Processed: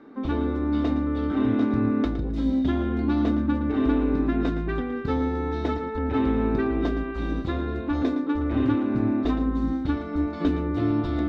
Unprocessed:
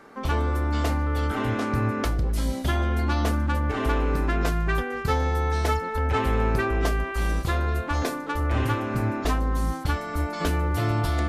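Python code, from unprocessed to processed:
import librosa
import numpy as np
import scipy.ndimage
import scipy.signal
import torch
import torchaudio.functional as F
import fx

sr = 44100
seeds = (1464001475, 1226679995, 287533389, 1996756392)

p1 = fx.air_absorb(x, sr, metres=200.0)
p2 = fx.small_body(p1, sr, hz=(280.0, 3700.0), ring_ms=35, db=17)
p3 = p2 + fx.echo_single(p2, sr, ms=114, db=-12.0, dry=0)
y = p3 * librosa.db_to_amplitude(-6.0)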